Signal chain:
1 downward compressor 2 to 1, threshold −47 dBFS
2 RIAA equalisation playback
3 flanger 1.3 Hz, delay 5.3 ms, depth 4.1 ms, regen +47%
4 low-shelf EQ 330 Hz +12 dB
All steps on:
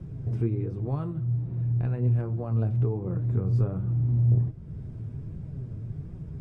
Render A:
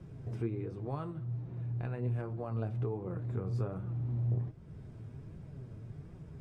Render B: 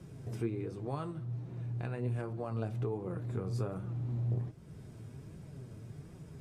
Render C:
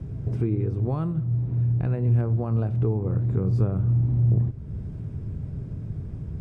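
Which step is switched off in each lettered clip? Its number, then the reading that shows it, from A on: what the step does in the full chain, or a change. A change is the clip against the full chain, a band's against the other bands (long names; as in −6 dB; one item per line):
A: 4, 1 kHz band +6.5 dB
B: 2, 125 Hz band −8.5 dB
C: 3, change in integrated loudness +2.5 LU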